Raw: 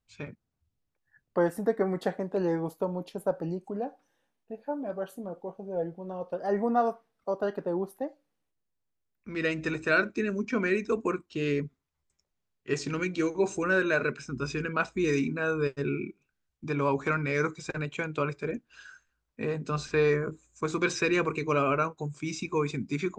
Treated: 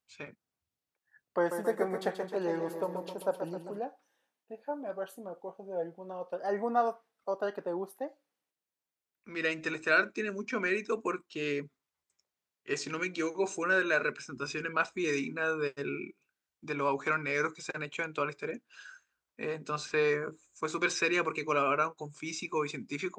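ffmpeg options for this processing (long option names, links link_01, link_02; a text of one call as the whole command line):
ffmpeg -i in.wav -filter_complex "[0:a]asettb=1/sr,asplit=3[link_01][link_02][link_03];[link_01]atrim=end=1.384[link_04];[link_02]atrim=start=1.38:end=3.79,asetpts=PTS-STARTPTS,afade=type=in:duration=0.004:curve=qsin,afade=type=out:start_time=2.406:duration=0.004:curve=qsin,aecho=1:1:132|264|396|528|660|792|924:0.422|0.245|0.142|0.0823|0.0477|0.0277|0.0161,atrim=end_sample=106281[link_05];[link_03]atrim=start=3.786[link_06];[link_04][link_05]acrossfade=duration=0.004:curve1=hsin:curve2=qsin[link_07];[link_07][link_06]acrossfade=duration=0.004:curve1=qsin:curve2=hsin,highpass=frequency=550:poles=1" out.wav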